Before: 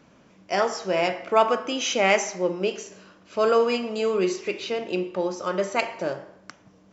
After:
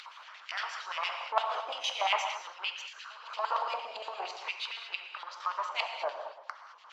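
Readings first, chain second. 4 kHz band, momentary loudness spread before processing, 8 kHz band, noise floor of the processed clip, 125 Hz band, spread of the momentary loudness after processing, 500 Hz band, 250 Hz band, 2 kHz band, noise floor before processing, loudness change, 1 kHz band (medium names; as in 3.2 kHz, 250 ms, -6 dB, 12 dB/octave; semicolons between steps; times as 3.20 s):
-3.5 dB, 10 LU, no reading, -53 dBFS, under -40 dB, 12 LU, -18.0 dB, under -35 dB, -7.0 dB, -56 dBFS, -10.0 dB, -5.5 dB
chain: partial rectifier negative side -7 dB; LFO band-pass square 8.7 Hz 980–3200 Hz; in parallel at +1 dB: compression, threshold -47 dBFS, peak gain reduction 23 dB; on the sum: LFO high-pass sine 0.45 Hz 640–1600 Hz; upward compressor, threshold -35 dBFS; high-pass 120 Hz; peaking EQ 4.3 kHz +4.5 dB 0.32 oct; pre-echo 283 ms -23 dB; gated-style reverb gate 250 ms flat, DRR 2 dB; harmonic-percussive split harmonic -11 dB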